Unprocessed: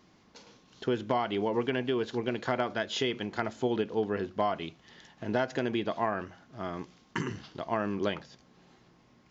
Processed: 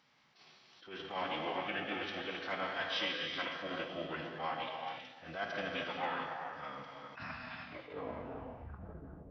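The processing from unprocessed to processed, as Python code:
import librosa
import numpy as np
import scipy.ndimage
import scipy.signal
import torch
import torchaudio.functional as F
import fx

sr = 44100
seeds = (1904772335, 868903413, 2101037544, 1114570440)

p1 = fx.tape_stop_end(x, sr, length_s=2.4)
p2 = scipy.signal.sosfilt(scipy.signal.butter(2, 2500.0, 'lowpass', fs=sr, output='sos'), p1)
p3 = np.diff(p2, prepend=0.0)
p4 = p3 + fx.echo_alternate(p3, sr, ms=114, hz=1400.0, feedback_pct=71, wet_db=-13.5, dry=0)
p5 = fx.rev_gated(p4, sr, seeds[0], gate_ms=470, shape='flat', drr_db=1.0)
p6 = fx.pitch_keep_formants(p5, sr, semitones=-4.5)
p7 = fx.low_shelf(p6, sr, hz=180.0, db=7.0)
p8 = fx.attack_slew(p7, sr, db_per_s=120.0)
y = p8 * librosa.db_to_amplitude(10.5)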